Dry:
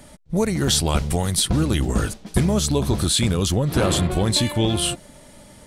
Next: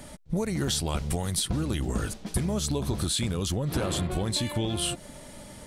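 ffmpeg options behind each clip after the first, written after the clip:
-af "acompressor=threshold=0.0501:ratio=6,volume=1.12"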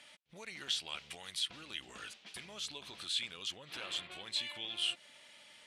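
-af "bandpass=f=2800:t=q:w=2.1:csg=0"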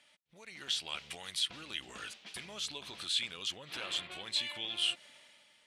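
-af "dynaudnorm=f=110:g=11:m=3.55,volume=0.398"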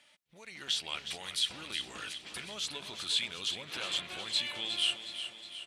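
-af "aecho=1:1:364|728|1092|1456|1820|2184|2548:0.316|0.18|0.103|0.0586|0.0334|0.019|0.0108,volume=1.26"

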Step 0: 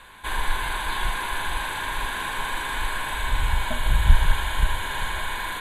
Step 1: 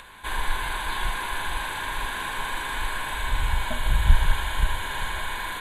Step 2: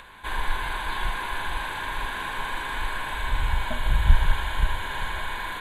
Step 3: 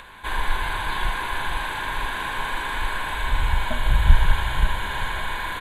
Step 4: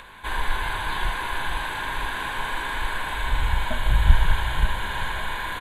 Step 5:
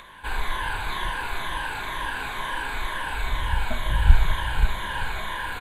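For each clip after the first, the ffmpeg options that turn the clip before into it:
-af "acompressor=mode=upward:threshold=0.01:ratio=2.5,volume=0.841"
-af "equalizer=f=9900:w=0.5:g=-7"
-filter_complex "[0:a]asplit=7[s0][s1][s2][s3][s4][s5][s6];[s1]adelay=89,afreqshift=-36,volume=0.126[s7];[s2]adelay=178,afreqshift=-72,volume=0.0794[s8];[s3]adelay=267,afreqshift=-108,volume=0.0501[s9];[s4]adelay=356,afreqshift=-144,volume=0.0316[s10];[s5]adelay=445,afreqshift=-180,volume=0.0197[s11];[s6]adelay=534,afreqshift=-216,volume=0.0124[s12];[s0][s7][s8][s9][s10][s11][s12]amix=inputs=7:normalize=0,volume=1.41"
-filter_complex "[0:a]asplit=2[s0][s1];[s1]adelay=19,volume=0.224[s2];[s0][s2]amix=inputs=2:normalize=0,volume=0.891"
-af "afftfilt=real='re*pow(10,7/40*sin(2*PI*(1.2*log(max(b,1)*sr/1024/100)/log(2)-(-2.1)*(pts-256)/sr)))':imag='im*pow(10,7/40*sin(2*PI*(1.2*log(max(b,1)*sr/1024/100)/log(2)-(-2.1)*(pts-256)/sr)))':win_size=1024:overlap=0.75,volume=0.794"

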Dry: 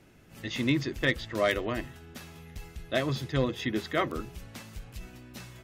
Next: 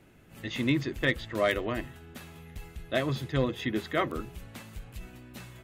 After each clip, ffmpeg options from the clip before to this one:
-af "equalizer=f=5400:w=2.1:g=-6.5"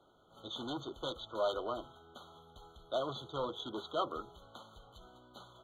-filter_complex "[0:a]volume=20,asoftclip=hard,volume=0.0501,acrossover=split=460 4800:gain=0.141 1 0.112[s0][s1][s2];[s0][s1][s2]amix=inputs=3:normalize=0,afftfilt=real='re*eq(mod(floor(b*sr/1024/1500),2),0)':imag='im*eq(mod(floor(b*sr/1024/1500),2),0)':win_size=1024:overlap=0.75"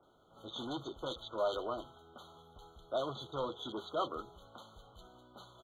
-filter_complex "[0:a]acrossover=split=2300[s0][s1];[s1]adelay=30[s2];[s0][s2]amix=inputs=2:normalize=0"

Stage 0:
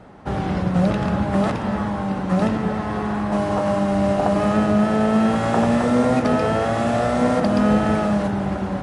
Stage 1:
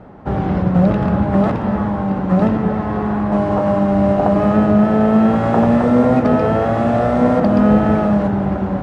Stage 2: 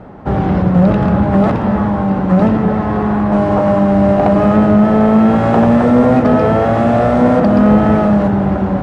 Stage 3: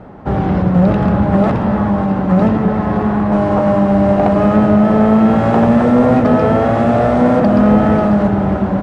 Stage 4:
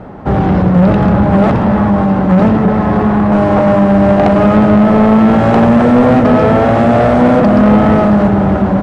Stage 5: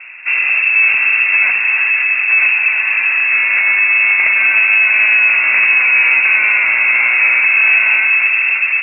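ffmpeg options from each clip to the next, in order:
-af "lowpass=f=1100:p=1,volume=1.88"
-af "acontrast=46,volume=0.891"
-af "aecho=1:1:543:0.266,volume=0.891"
-af "acontrast=69,volume=0.891"
-af "lowpass=f=2400:t=q:w=0.5098,lowpass=f=2400:t=q:w=0.6013,lowpass=f=2400:t=q:w=0.9,lowpass=f=2400:t=q:w=2.563,afreqshift=-2800,volume=0.668"

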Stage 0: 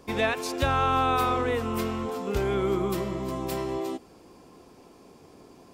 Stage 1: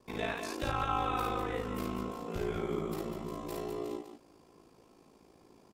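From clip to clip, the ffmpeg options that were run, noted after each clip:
-filter_complex "[0:a]aeval=exprs='val(0)*sin(2*PI*27*n/s)':c=same,asplit=2[s0][s1];[s1]aecho=0:1:52.48|198.3:0.794|0.447[s2];[s0][s2]amix=inputs=2:normalize=0,volume=0.376"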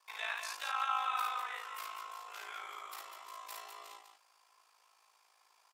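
-af "highpass=f=960:w=0.5412,highpass=f=960:w=1.3066,volume=1.12"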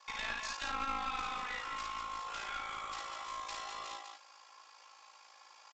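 -af "aecho=1:1:3.6:0.55,acompressor=threshold=0.00316:ratio=2,aresample=16000,aeval=exprs='clip(val(0),-1,0.00355)':c=same,aresample=44100,volume=2.99"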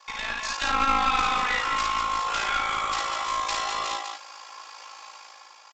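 -af "dynaudnorm=f=110:g=11:m=2.51,volume=2.24"

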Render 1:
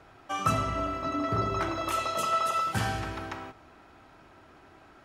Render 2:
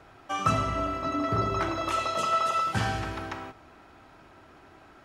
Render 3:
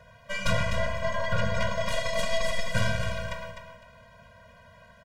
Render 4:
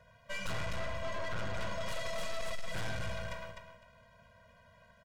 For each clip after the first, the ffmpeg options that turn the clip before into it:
-filter_complex "[0:a]acrossover=split=8000[s0][s1];[s1]acompressor=threshold=0.001:ratio=4:attack=1:release=60[s2];[s0][s2]amix=inputs=2:normalize=0,volume=1.19"
-filter_complex "[0:a]aeval=exprs='0.266*(cos(1*acos(clip(val(0)/0.266,-1,1)))-cos(1*PI/2))+0.0841*(cos(3*acos(clip(val(0)/0.266,-1,1)))-cos(3*PI/2))+0.0668*(cos(4*acos(clip(val(0)/0.266,-1,1)))-cos(4*PI/2))+0.075*(cos(5*acos(clip(val(0)/0.266,-1,1)))-cos(5*PI/2))+0.0299*(cos(8*acos(clip(val(0)/0.266,-1,1)))-cos(8*PI/2))':c=same,asplit=2[s0][s1];[s1]aecho=0:1:253|506|759:0.398|0.0876|0.0193[s2];[s0][s2]amix=inputs=2:normalize=0,afftfilt=real='re*eq(mod(floor(b*sr/1024/230),2),0)':imag='im*eq(mod(floor(b*sr/1024/230),2),0)':win_size=1024:overlap=0.75"
-af "aeval=exprs='(tanh(35.5*val(0)+0.75)-tanh(0.75))/35.5':c=same,volume=0.631"

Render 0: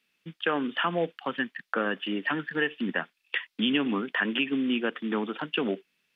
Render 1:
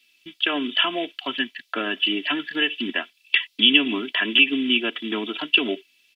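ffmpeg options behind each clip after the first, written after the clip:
-af "highshelf=f=2100:t=q:w=1.5:g=10.5,aecho=1:1:3:0.83"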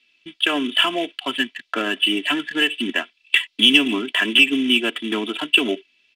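-filter_complex "[0:a]asplit=2[s0][s1];[s1]asoftclip=type=hard:threshold=0.251,volume=0.631[s2];[s0][s2]amix=inputs=2:normalize=0,adynamicsmooth=sensitivity=5:basefreq=3900,volume=0.891"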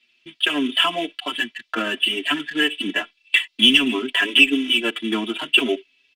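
-filter_complex "[0:a]asplit=2[s0][s1];[s1]adelay=5.9,afreqshift=0.57[s2];[s0][s2]amix=inputs=2:normalize=1,volume=1.33"

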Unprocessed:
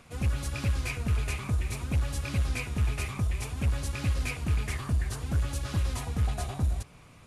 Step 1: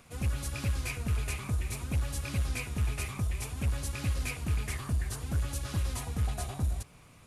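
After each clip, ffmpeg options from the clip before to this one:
-af "highshelf=f=9300:g=9.5,volume=0.708"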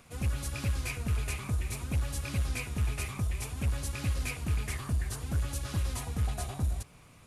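-af anull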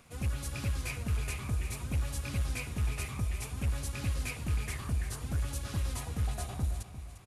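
-af "aecho=1:1:350|700|1050|1400:0.237|0.0972|0.0399|0.0163,volume=0.794"

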